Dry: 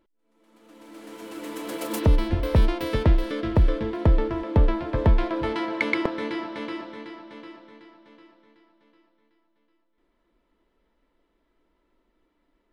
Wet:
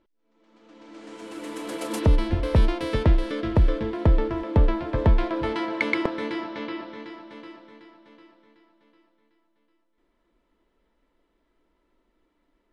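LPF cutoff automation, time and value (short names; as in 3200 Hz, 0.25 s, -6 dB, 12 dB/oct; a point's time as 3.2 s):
LPF 24 dB/oct
0.87 s 6200 Hz
1.38 s 11000 Hz
6.3 s 11000 Hz
6.75 s 4700 Hz
7.23 s 11000 Hz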